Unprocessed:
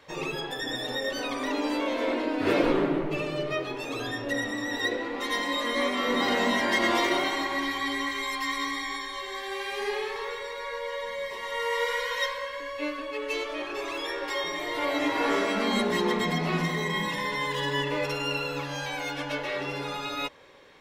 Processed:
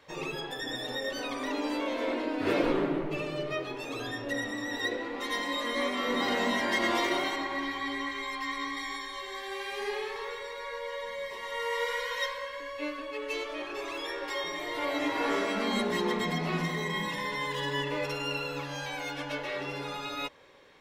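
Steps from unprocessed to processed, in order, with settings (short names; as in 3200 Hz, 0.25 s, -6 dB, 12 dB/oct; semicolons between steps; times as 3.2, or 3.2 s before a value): 7.36–8.77 high shelf 6300 Hz -11.5 dB; gain -3.5 dB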